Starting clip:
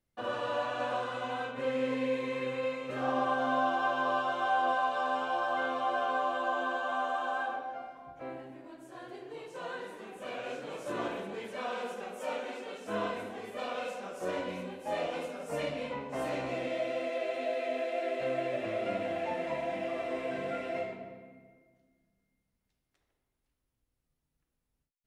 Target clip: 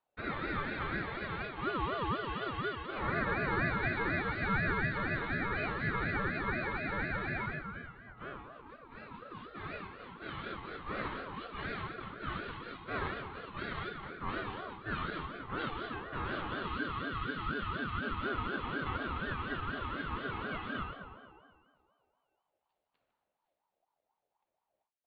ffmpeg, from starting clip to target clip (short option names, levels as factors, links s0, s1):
-af "aresample=8000,aresample=44100,aeval=exprs='val(0)*sin(2*PI*760*n/s+760*0.25/4.1*sin(2*PI*4.1*n/s))':c=same"